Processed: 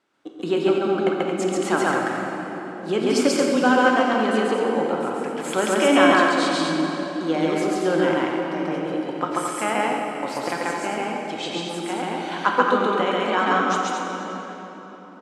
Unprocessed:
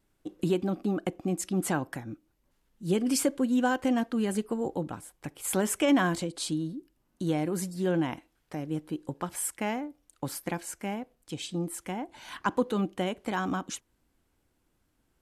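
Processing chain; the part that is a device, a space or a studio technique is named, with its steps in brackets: station announcement (BPF 370–4900 Hz; bell 1300 Hz +6.5 dB 0.31 oct; loudspeakers at several distances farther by 47 m 0 dB, 77 m -5 dB; reverb RT60 4.1 s, pre-delay 18 ms, DRR 1.5 dB); gain +6.5 dB

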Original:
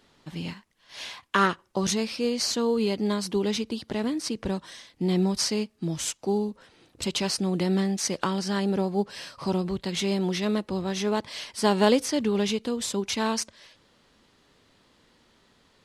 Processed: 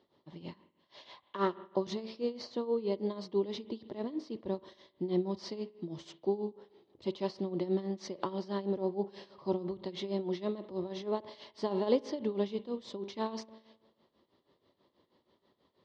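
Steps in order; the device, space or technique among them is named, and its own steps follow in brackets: combo amplifier with spring reverb and tremolo (spring tank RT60 1.1 s, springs 45 ms, chirp 35 ms, DRR 15 dB; tremolo 6.2 Hz, depth 78%; speaker cabinet 84–4400 Hz, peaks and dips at 360 Hz +9 dB, 580 Hz +7 dB, 1000 Hz +5 dB, 1500 Hz -10 dB, 2500 Hz -9 dB); 2.3–2.92 high shelf 4100 Hz -5.5 dB; gain -8.5 dB

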